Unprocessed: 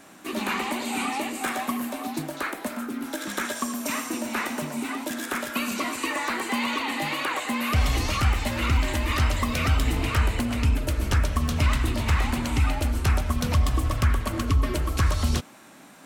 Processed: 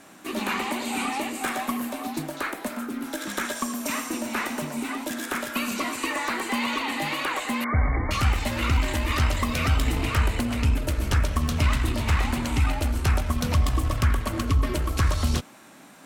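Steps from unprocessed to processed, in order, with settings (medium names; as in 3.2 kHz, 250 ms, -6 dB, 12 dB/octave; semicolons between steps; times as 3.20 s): Chebyshev shaper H 4 -25 dB, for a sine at -11.5 dBFS; 7.64–8.11 s: brick-wall FIR low-pass 2.3 kHz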